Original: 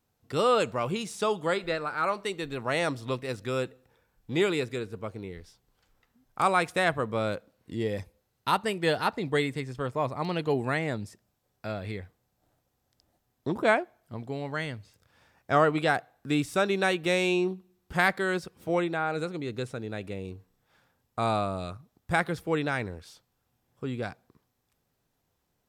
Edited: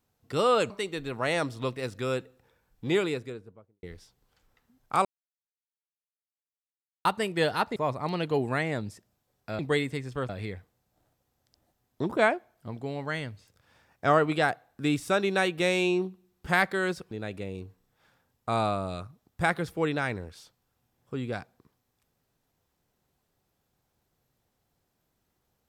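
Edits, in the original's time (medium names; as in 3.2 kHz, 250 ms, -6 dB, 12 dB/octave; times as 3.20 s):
0.70–2.16 s: delete
4.32–5.29 s: studio fade out
6.51–8.51 s: mute
9.22–9.92 s: move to 11.75 s
18.57–19.81 s: delete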